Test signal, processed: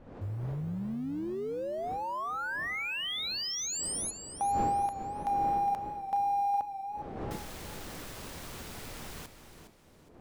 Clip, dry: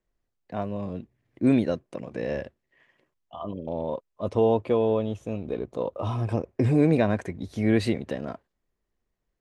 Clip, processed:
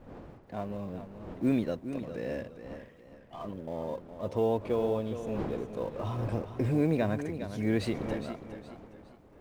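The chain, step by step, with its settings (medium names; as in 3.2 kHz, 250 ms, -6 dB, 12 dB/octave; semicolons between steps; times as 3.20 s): companding laws mixed up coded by mu; wind noise 470 Hz -40 dBFS; modulated delay 412 ms, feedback 34%, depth 55 cents, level -10.5 dB; trim -7 dB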